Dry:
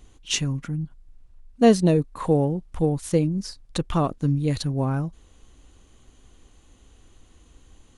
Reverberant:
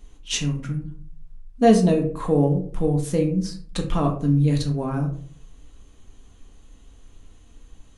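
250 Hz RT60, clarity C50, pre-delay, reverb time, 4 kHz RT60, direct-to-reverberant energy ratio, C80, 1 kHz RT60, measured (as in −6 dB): 0.55 s, 9.5 dB, 3 ms, 0.50 s, 0.25 s, 1.0 dB, 14.0 dB, 0.40 s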